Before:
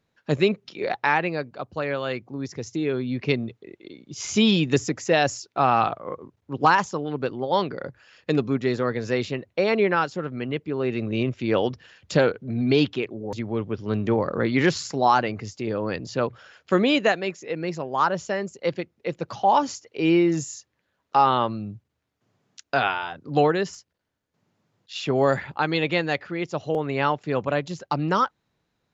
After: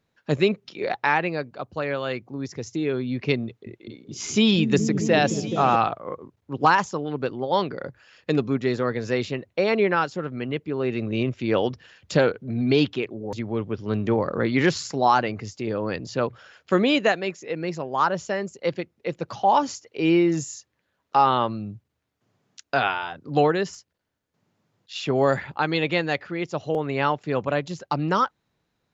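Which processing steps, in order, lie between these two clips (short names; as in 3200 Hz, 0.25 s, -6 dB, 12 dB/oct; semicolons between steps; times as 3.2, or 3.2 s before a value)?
3.45–5.76 repeats that get brighter 0.212 s, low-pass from 200 Hz, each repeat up 1 oct, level -3 dB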